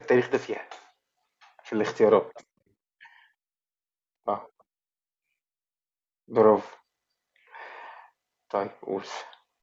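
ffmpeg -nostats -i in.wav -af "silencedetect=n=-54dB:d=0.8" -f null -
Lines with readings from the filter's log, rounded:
silence_start: 3.26
silence_end: 4.26 | silence_duration: 1.00
silence_start: 4.62
silence_end: 6.28 | silence_duration: 1.67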